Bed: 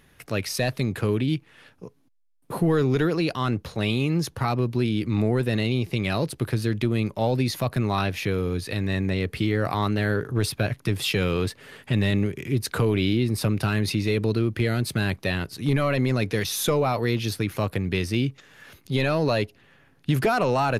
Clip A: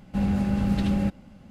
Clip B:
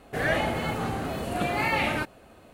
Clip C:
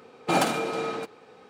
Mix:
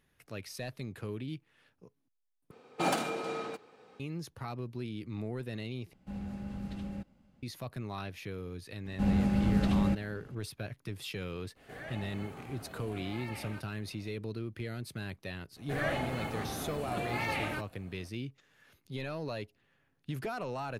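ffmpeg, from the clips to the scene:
-filter_complex "[1:a]asplit=2[a][b];[2:a]asplit=2[c][d];[0:a]volume=-15.5dB[e];[c]acompressor=threshold=-48dB:ratio=1.5:attack=11:release=254:knee=1:detection=peak[f];[e]asplit=3[g][h][i];[g]atrim=end=2.514[j];[3:a]atrim=end=1.49,asetpts=PTS-STARTPTS,volume=-7dB[k];[h]atrim=start=3.996:end=5.934[l];[a]atrim=end=1.5,asetpts=PTS-STARTPTS,volume=-16dB[m];[i]atrim=start=7.426[n];[b]atrim=end=1.5,asetpts=PTS-STARTPTS,volume=-3.5dB,afade=t=in:d=0.004:c=hsin,afade=t=out:st=1.496:d=0.004:c=hsin,adelay=8850[o];[f]atrim=end=2.53,asetpts=PTS-STARTPTS,volume=-10.5dB,afade=t=in:d=0.004:c=hsin,afade=t=out:st=2.526:d=0.004:c=hsin,adelay=11560[p];[d]atrim=end=2.53,asetpts=PTS-STARTPTS,volume=-8.5dB,afade=t=in:d=0.004:c=hsin,afade=t=out:st=2.526:d=0.004:c=hsin,adelay=686196S[q];[j][k]acrossfade=d=0.004:c1=hsin:c2=hsin[r];[r][l]acrossfade=d=0.004:c1=hsin:c2=hsin[s];[s][m]acrossfade=d=0.004:c1=hsin:c2=hsin[t];[t][n]acrossfade=d=0.004:c1=hsin:c2=hsin[u];[u][o][p][q]amix=inputs=4:normalize=0"

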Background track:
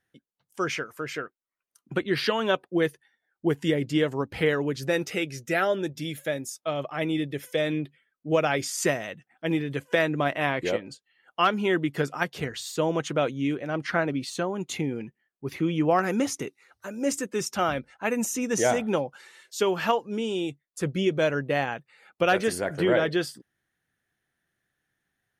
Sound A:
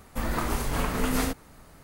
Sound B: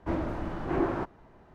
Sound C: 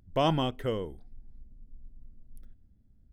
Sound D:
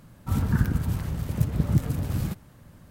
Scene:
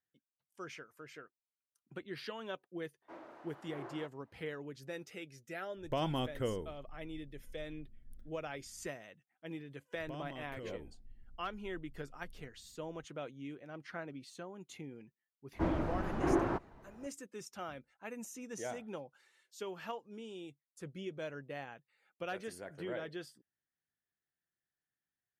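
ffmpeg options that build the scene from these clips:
-filter_complex "[2:a]asplit=2[a][b];[3:a]asplit=2[c][d];[0:a]volume=-18.5dB[e];[a]highpass=480[f];[c]alimiter=limit=-19.5dB:level=0:latency=1:release=199[g];[d]acompressor=threshold=-37dB:ratio=6:attack=3.2:release=140:knee=1:detection=peak[h];[f]atrim=end=1.54,asetpts=PTS-STARTPTS,volume=-15.5dB,afade=t=in:d=0.004:c=hsin,afade=t=out:st=1.536:d=0.004:c=hsin,adelay=3020[i];[g]atrim=end=3.12,asetpts=PTS-STARTPTS,volume=-5dB,afade=t=in:d=0.004:c=hsin,afade=t=out:st=3.116:d=0.004:c=hsin,adelay=5760[j];[h]atrim=end=3.12,asetpts=PTS-STARTPTS,volume=-7dB,afade=t=in:d=0.004:c=hsin,afade=t=out:st=3.116:d=0.004:c=hsin,adelay=9930[k];[b]atrim=end=1.54,asetpts=PTS-STARTPTS,volume=-2.5dB,afade=t=in:d=0.004:c=hsin,afade=t=out:st=1.536:d=0.004:c=hsin,adelay=15530[l];[e][i][j][k][l]amix=inputs=5:normalize=0"

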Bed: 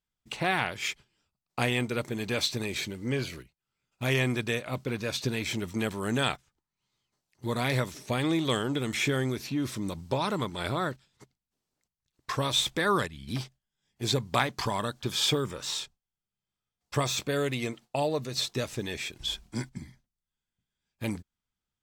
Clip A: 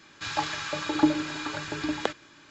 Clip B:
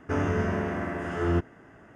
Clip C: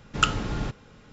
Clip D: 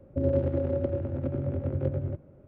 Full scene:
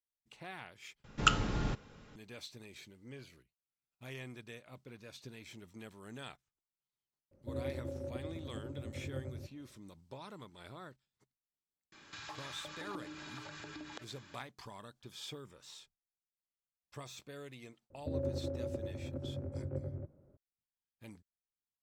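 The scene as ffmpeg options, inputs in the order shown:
-filter_complex "[4:a]asplit=2[a][b];[0:a]volume=-20dB[c];[1:a]acompressor=threshold=-40dB:ratio=6:attack=3.2:release=140:knee=1:detection=peak[d];[b]lowpass=1.8k[e];[c]asplit=2[f][g];[f]atrim=end=1.044[h];[3:a]atrim=end=1.12,asetpts=PTS-STARTPTS,volume=-5dB[i];[g]atrim=start=2.156[j];[a]atrim=end=2.47,asetpts=PTS-STARTPTS,volume=-14dB,afade=t=in:d=0.004:c=hsin,afade=t=out:st=2.466:d=0.004:c=hsin,adelay=7310[k];[d]atrim=end=2.5,asetpts=PTS-STARTPTS,volume=-5dB,afade=t=in:d=0.004:c=hsin,afade=t=out:st=2.496:d=0.004:c=hsin,adelay=11920[l];[e]atrim=end=2.47,asetpts=PTS-STARTPTS,volume=-11dB,afade=t=in:d=0.004:c=hsin,afade=t=out:st=2.466:d=0.004:c=hsin,adelay=17900[m];[h][i]acrossfade=d=0.004:c1=hsin:c2=hsin[n];[n][j]acrossfade=d=0.004:c1=hsin:c2=hsin[o];[o][k][l][m]amix=inputs=4:normalize=0"

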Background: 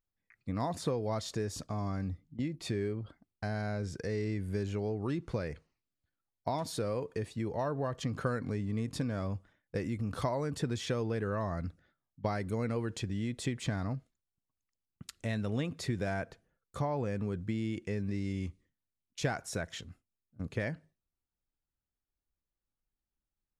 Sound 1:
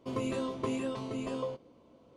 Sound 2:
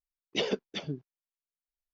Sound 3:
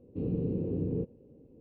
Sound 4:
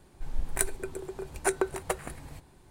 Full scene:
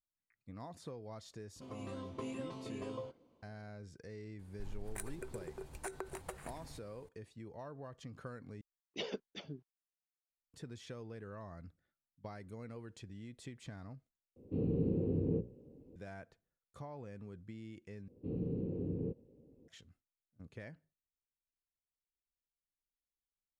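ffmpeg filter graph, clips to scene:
-filter_complex "[3:a]asplit=2[a][b];[0:a]volume=-14.5dB[c];[1:a]dynaudnorm=f=200:g=5:m=6dB[d];[4:a]acompressor=threshold=-29dB:ratio=6:attack=3.2:release=140:knee=1:detection=peak[e];[a]bandreject=f=60:t=h:w=6,bandreject=f=120:t=h:w=6,bandreject=f=180:t=h:w=6,bandreject=f=240:t=h:w=6,bandreject=f=300:t=h:w=6,bandreject=f=360:t=h:w=6,bandreject=f=420:t=h:w=6,bandreject=f=480:t=h:w=6,bandreject=f=540:t=h:w=6,bandreject=f=600:t=h:w=6[f];[c]asplit=4[g][h][i][j];[g]atrim=end=8.614[k];[2:a]atrim=end=1.93,asetpts=PTS-STARTPTS,volume=-11dB[l];[h]atrim=start=10.536:end=14.364[m];[f]atrim=end=1.6,asetpts=PTS-STARTPTS,volume=-1dB[n];[i]atrim=start=15.956:end=18.084[o];[b]atrim=end=1.6,asetpts=PTS-STARTPTS,volume=-6.5dB[p];[j]atrim=start=19.676[q];[d]atrim=end=2.16,asetpts=PTS-STARTPTS,volume=-14.5dB,afade=t=in:d=0.004:c=hsin,afade=t=out:st=2.156:d=0.004:c=hsin,adelay=1550[r];[e]atrim=end=2.7,asetpts=PTS-STARTPTS,volume=-8.5dB,afade=t=in:d=0.004:c=hsin,afade=t=out:st=2.696:d=0.004:c=hsin,adelay=4390[s];[k][l]acrossfade=d=0.004:c1=hsin:c2=hsin[t];[t][m]acrossfade=d=0.004:c1=hsin:c2=hsin[u];[u][n]acrossfade=d=0.004:c1=hsin:c2=hsin[v];[v][o]acrossfade=d=0.004:c1=hsin:c2=hsin[w];[w][p]acrossfade=d=0.004:c1=hsin:c2=hsin[x];[x][q]acrossfade=d=0.004:c1=hsin:c2=hsin[y];[y][r][s]amix=inputs=3:normalize=0"

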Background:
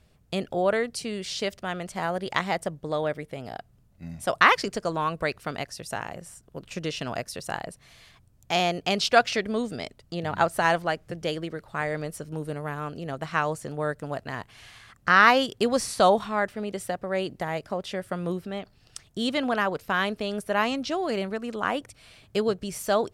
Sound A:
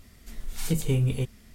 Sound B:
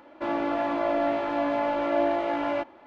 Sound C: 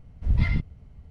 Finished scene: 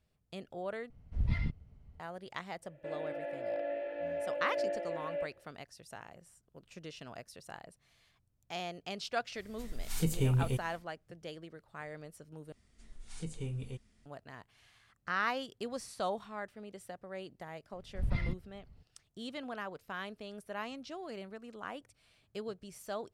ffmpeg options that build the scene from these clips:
-filter_complex "[3:a]asplit=2[a][b];[1:a]asplit=2[c][d];[0:a]volume=-16dB[e];[2:a]asplit=3[f][g][h];[f]bandpass=f=530:t=q:w=8,volume=0dB[i];[g]bandpass=f=1.84k:t=q:w=8,volume=-6dB[j];[h]bandpass=f=2.48k:t=q:w=8,volume=-9dB[k];[i][j][k]amix=inputs=3:normalize=0[l];[d]aresample=22050,aresample=44100[m];[b]equalizer=f=76:t=o:w=0.77:g=-5[n];[e]asplit=3[o][p][q];[o]atrim=end=0.904[r];[a]atrim=end=1.1,asetpts=PTS-STARTPTS,volume=-9.5dB[s];[p]atrim=start=1.996:end=12.524[t];[m]atrim=end=1.54,asetpts=PTS-STARTPTS,volume=-15dB[u];[q]atrim=start=14.056[v];[l]atrim=end=2.86,asetpts=PTS-STARTPTS,volume=-2dB,afade=t=in:d=0.004:c=hsin,afade=t=out:st=2.856:d=0.004:c=hsin,adelay=2630[w];[c]atrim=end=1.54,asetpts=PTS-STARTPTS,volume=-5dB,afade=t=in:d=0.1,afade=t=out:st=1.44:d=0.1,adelay=9320[x];[n]atrim=end=1.1,asetpts=PTS-STARTPTS,volume=-9dB,afade=t=in:d=0.004:c=hsin,afade=t=out:st=1.096:d=0.004:c=hsin,adelay=17730[y];[r][s]acrossfade=d=0.004:c1=hsin:c2=hsin[z];[z][t]acrossfade=d=0.004:c1=hsin:c2=hsin[aa];[aa][u]acrossfade=d=0.004:c1=hsin:c2=hsin[ab];[ab][v]acrossfade=d=0.004:c1=hsin:c2=hsin[ac];[ac][w][x][y]amix=inputs=4:normalize=0"

